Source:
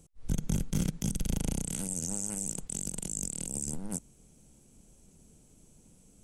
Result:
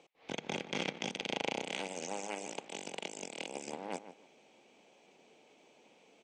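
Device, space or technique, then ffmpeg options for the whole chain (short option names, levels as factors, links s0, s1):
phone earpiece: -filter_complex "[0:a]bass=f=250:g=-10,treble=f=4000:g=9,highpass=440,equalizer=f=790:t=q:w=4:g=4,equalizer=f=1400:t=q:w=4:g=-6,equalizer=f=2300:t=q:w=4:g=6,lowpass=f=3300:w=0.5412,lowpass=f=3300:w=1.3066,asplit=2[s0][s1];[s1]adelay=150,lowpass=f=1900:p=1,volume=0.251,asplit=2[s2][s3];[s3]adelay=150,lowpass=f=1900:p=1,volume=0.26,asplit=2[s4][s5];[s5]adelay=150,lowpass=f=1900:p=1,volume=0.26[s6];[s0][s2][s4][s6]amix=inputs=4:normalize=0,volume=2.66"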